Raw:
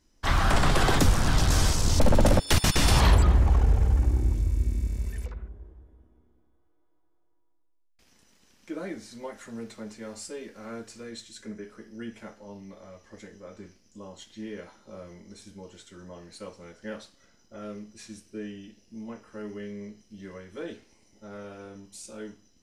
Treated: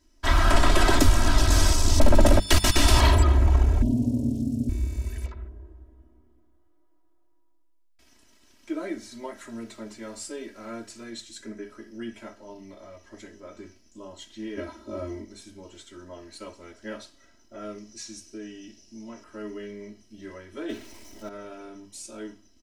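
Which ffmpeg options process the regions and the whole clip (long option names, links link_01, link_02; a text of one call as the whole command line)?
ffmpeg -i in.wav -filter_complex "[0:a]asettb=1/sr,asplit=3[link_01][link_02][link_03];[link_01]atrim=end=3.824[link_04];[link_02]atrim=start=3.82:end=4.69,asetpts=PTS-STARTPTS,afade=type=in:duration=0.004:curve=qsin,afade=type=out:start_time=0.866:duration=0.004:curve=qsin,asuperstop=centerf=1400:order=8:qfactor=0.58,aeval=exprs='val(0)*sin(2*PI*180*n/s)':channel_layout=same[link_05];[link_03]atrim=start=4.686[link_06];[link_04][link_05]acrossfade=duration=0.004:curve1=hsin:curve2=qsin[link_07];[link_07][link_06]acrossfade=duration=0.004:curve1=qsin:curve2=hsin,asettb=1/sr,asplit=3[link_08][link_09][link_10];[link_08]atrim=end=14.574[link_11];[link_09]atrim=start=14.57:end=15.25,asetpts=PTS-STARTPTS,afade=type=in:duration=0.004:curve=qsin,afade=type=out:start_time=0.676:duration=0.004:curve=qsin,highpass=48,lowshelf=frequency=470:gain=12,aecho=1:1:3.1:0.66,atrim=end_sample=29988[link_12];[link_10]atrim=start=15.246[link_13];[link_11][link_12]acrossfade=duration=0.004:curve1=hsin:curve2=qsin[link_14];[link_14][link_13]acrossfade=duration=0.004:curve1=qsin:curve2=hsin,asettb=1/sr,asplit=3[link_15][link_16][link_17];[link_15]atrim=end=17.784[link_18];[link_16]atrim=start=17.78:end=19.24,asetpts=PTS-STARTPTS,afade=type=in:duration=0.004:curve=qsin,afade=type=out:start_time=1.456:duration=0.004:curve=qsin,equalizer=frequency=5900:width=1.3:gain=10,acompressor=threshold=-43dB:ratio=1.5:attack=3.2:release=140:knee=1:detection=peak[link_19];[link_17]atrim=start=19.236[link_20];[link_18][link_19]acrossfade=duration=0.004:curve1=hsin:curve2=qsin[link_21];[link_21][link_20]acrossfade=duration=0.004:curve1=qsin:curve2=hsin,asettb=1/sr,asplit=3[link_22][link_23][link_24];[link_22]atrim=end=20.694[link_25];[link_23]atrim=start=20.69:end=21.29,asetpts=PTS-STARTPTS,afade=type=in:duration=0.004:curve=qsin,afade=type=out:start_time=0.596:duration=0.004:curve=qsin,aeval=exprs='val(0)+0.5*0.00237*sgn(val(0))':channel_layout=same,acontrast=28[link_26];[link_24]atrim=start=21.286[link_27];[link_25][link_26]acrossfade=duration=0.004:curve1=hsin:curve2=qsin[link_28];[link_28][link_27]acrossfade=duration=0.004:curve1=qsin:curve2=hsin,bandreject=frequency=50:width_type=h:width=6,bandreject=frequency=100:width_type=h:width=6,bandreject=frequency=150:width_type=h:width=6,bandreject=frequency=200:width_type=h:width=6,aecho=1:1:3.1:0.86" out.wav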